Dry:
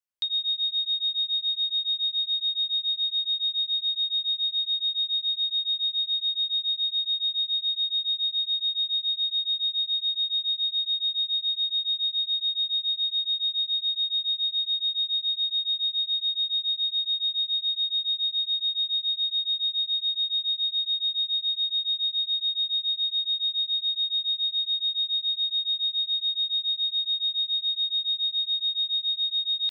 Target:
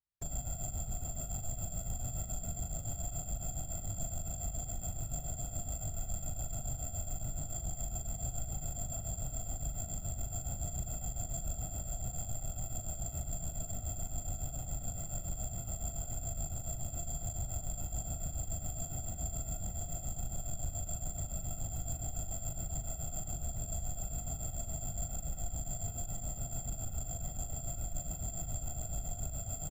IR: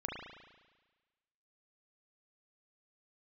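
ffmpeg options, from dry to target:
-filter_complex "[0:a]afreqshift=-57,aeval=exprs='abs(val(0))':channel_layout=same,afftfilt=real='hypot(re,im)*cos(2*PI*random(0))':imag='hypot(re,im)*sin(2*PI*random(1))':win_size=512:overlap=0.75,asplit=2[link_01][link_02];[link_02]acrusher=samples=11:mix=1:aa=0.000001,volume=-8dB[link_03];[link_01][link_03]amix=inputs=2:normalize=0,asoftclip=type=tanh:threshold=-28.5dB,asplit=2[link_04][link_05];[link_05]adelay=40,volume=-7.5dB[link_06];[link_04][link_06]amix=inputs=2:normalize=0,volume=-3dB"

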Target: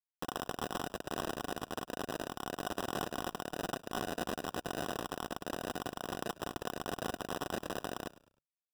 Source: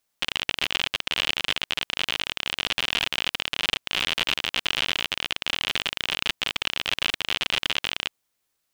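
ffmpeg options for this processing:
ffmpeg -i in.wav -filter_complex "[0:a]equalizer=frequency=1500:width=1.7:gain=-7,acrossover=split=840|1800[link_01][link_02][link_03];[link_03]alimiter=limit=-19dB:level=0:latency=1[link_04];[link_01][link_02][link_04]amix=inputs=3:normalize=0,acrusher=bits=3:mix=0:aa=0.000001,asplit=3[link_05][link_06][link_07];[link_05]bandpass=frequency=730:width_type=q:width=8,volume=0dB[link_08];[link_06]bandpass=frequency=1090:width_type=q:width=8,volume=-6dB[link_09];[link_07]bandpass=frequency=2440:width_type=q:width=8,volume=-9dB[link_10];[link_08][link_09][link_10]amix=inputs=3:normalize=0,acrusher=samples=20:mix=1:aa=0.000001,asplit=2[link_11][link_12];[link_12]asplit=3[link_13][link_14][link_15];[link_13]adelay=103,afreqshift=-51,volume=-18dB[link_16];[link_14]adelay=206,afreqshift=-102,volume=-27.1dB[link_17];[link_15]adelay=309,afreqshift=-153,volume=-36.2dB[link_18];[link_16][link_17][link_18]amix=inputs=3:normalize=0[link_19];[link_11][link_19]amix=inputs=2:normalize=0,volume=6dB" out.wav

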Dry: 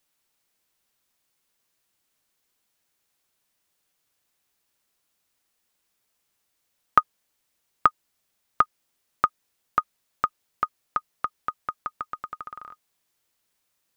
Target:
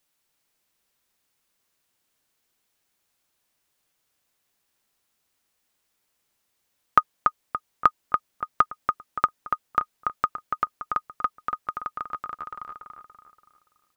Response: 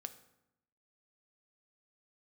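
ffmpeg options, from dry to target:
-filter_complex "[0:a]asplit=2[link_01][link_02];[link_02]adelay=286,lowpass=frequency=2800:poles=1,volume=-4dB,asplit=2[link_03][link_04];[link_04]adelay=286,lowpass=frequency=2800:poles=1,volume=0.43,asplit=2[link_05][link_06];[link_06]adelay=286,lowpass=frequency=2800:poles=1,volume=0.43,asplit=2[link_07][link_08];[link_08]adelay=286,lowpass=frequency=2800:poles=1,volume=0.43,asplit=2[link_09][link_10];[link_10]adelay=286,lowpass=frequency=2800:poles=1,volume=0.43[link_11];[link_01][link_03][link_05][link_07][link_09][link_11]amix=inputs=6:normalize=0"

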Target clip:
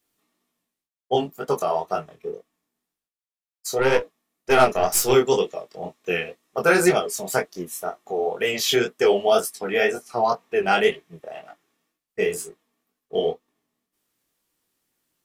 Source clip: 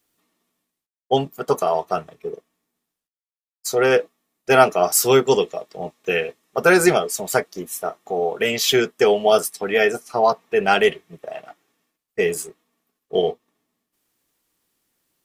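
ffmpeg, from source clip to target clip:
ffmpeg -i in.wav -filter_complex "[0:a]asettb=1/sr,asplit=3[link_01][link_02][link_03];[link_01]atrim=end=3.794[link_04];[link_02]atrim=start=3.79:end=5.12,asetpts=PTS-STARTPTS,afade=type=in:duration=0.004:curve=qsin,afade=type=out:start_time=1.326:duration=0.004:curve=qsin,aeval=exprs='0.794*(cos(1*acos(clip(val(0)/0.794,-1,1)))-cos(1*PI/2))+0.0562*(cos(6*acos(clip(val(0)/0.794,-1,1)))-cos(6*PI/2))':channel_layout=same[link_05];[link_03]atrim=start=5.116[link_06];[link_04][link_05]acrossfade=duration=0.004:curve1=hsin:curve2=qsin[link_07];[link_07][link_06]acrossfade=duration=0.004:curve1=qsin:curve2=hsin,flanger=delay=19.5:depth=6.6:speed=2" out.wav

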